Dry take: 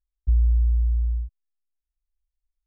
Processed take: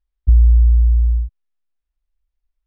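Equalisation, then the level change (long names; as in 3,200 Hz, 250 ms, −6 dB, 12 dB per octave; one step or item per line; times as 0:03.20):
dynamic equaliser 120 Hz, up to +5 dB, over −34 dBFS, Q 1.1
high-frequency loss of the air 210 metres
+7.5 dB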